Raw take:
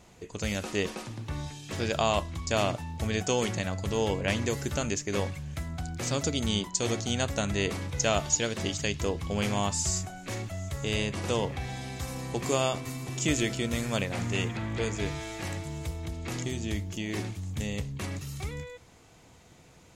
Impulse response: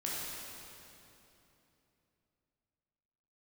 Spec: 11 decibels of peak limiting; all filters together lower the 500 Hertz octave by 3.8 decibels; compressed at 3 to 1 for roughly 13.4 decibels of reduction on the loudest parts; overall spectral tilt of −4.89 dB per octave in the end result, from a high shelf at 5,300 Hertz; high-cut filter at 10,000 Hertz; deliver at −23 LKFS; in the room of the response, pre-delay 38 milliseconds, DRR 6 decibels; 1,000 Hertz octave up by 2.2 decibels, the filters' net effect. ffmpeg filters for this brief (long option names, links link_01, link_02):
-filter_complex "[0:a]lowpass=10000,equalizer=frequency=500:width_type=o:gain=-6.5,equalizer=frequency=1000:width_type=o:gain=5.5,highshelf=frequency=5300:gain=-7,acompressor=threshold=-41dB:ratio=3,alimiter=level_in=11.5dB:limit=-24dB:level=0:latency=1,volume=-11.5dB,asplit=2[link_01][link_02];[1:a]atrim=start_sample=2205,adelay=38[link_03];[link_02][link_03]afir=irnorm=-1:irlink=0,volume=-10dB[link_04];[link_01][link_04]amix=inputs=2:normalize=0,volume=21.5dB"